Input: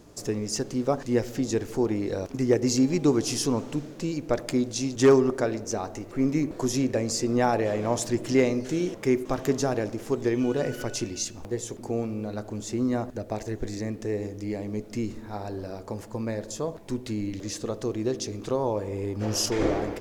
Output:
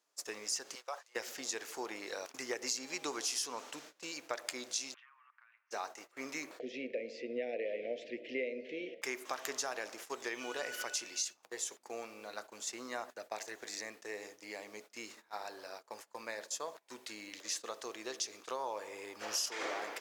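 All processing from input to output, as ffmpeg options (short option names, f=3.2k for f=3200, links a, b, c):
-filter_complex "[0:a]asettb=1/sr,asplit=3[a][b][c];[a]atrim=end=0.754[d];[b]atrim=start=0.75:end=1.16,asetpts=PTS-STARTPTS,afade=t=in:d=0.004:c=qsin,afade=t=out:st=0.406:d=0.004:c=qsin,highpass=f=540:w=0.5412,highpass=f=540:w=1.3066,acompressor=threshold=-28dB:ratio=4:attack=3.2:release=140:knee=1:detection=peak[e];[c]atrim=start=1.156[f];[d][e]acrossfade=d=0.004:c1=hsin:c2=qsin[g];[g][f]acrossfade=d=0.004:c1=qsin:c2=hsin,asettb=1/sr,asplit=3[h][i][j];[h]atrim=end=4.944[k];[i]atrim=start=4.94:end=5.71,asetpts=PTS-STARTPTS,afade=t=in:d=0.004:c=qsin,afade=t=out:st=0.766:d=0.004:c=qsin,asuperpass=centerf=1700:order=8:qfactor=0.94,acompressor=threshold=-37dB:ratio=12:attack=3.2:release=140:knee=1:detection=peak[l];[j]atrim=start=5.706[m];[k][l]acrossfade=d=0.004:c1=hsin:c2=qsin[n];[n][m]acrossfade=d=0.004:c1=qsin:c2=hsin,asettb=1/sr,asplit=3[o][p][q];[o]atrim=end=6.594[r];[p]atrim=start=6.59:end=9.02,asetpts=PTS-STARTPTS,afade=t=in:d=0.004:c=qsin,afade=t=out:st=2.426:d=0.004:c=qsin,asuperstop=centerf=1100:order=8:qfactor=0.8,highpass=120,equalizer=f=240:t=q:w=4:g=7,equalizer=f=480:t=q:w=4:g=9,equalizer=f=1.7k:t=q:w=4:g=-5,lowpass=f=2.6k:w=0.5412,lowpass=f=2.6k:w=1.3066[s];[q]atrim=start=9.016[t];[r][s]acrossfade=d=0.004:c1=hsin:c2=qsin[u];[u][t]acrossfade=d=0.004:c1=qsin:c2=hsin,agate=range=-20dB:threshold=-36dB:ratio=16:detection=peak,highpass=1.1k,acompressor=threshold=-35dB:ratio=4,volume=1dB"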